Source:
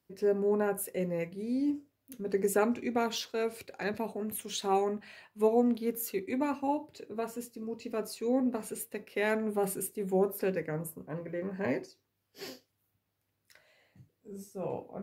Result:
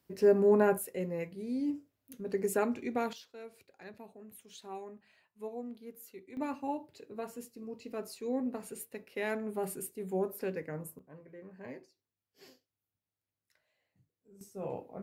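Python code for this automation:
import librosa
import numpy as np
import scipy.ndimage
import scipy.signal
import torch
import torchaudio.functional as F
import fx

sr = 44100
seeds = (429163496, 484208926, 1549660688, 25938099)

y = fx.gain(x, sr, db=fx.steps((0.0, 4.0), (0.78, -3.0), (3.13, -15.5), (6.37, -5.0), (10.99, -14.0), (14.41, -2.5)))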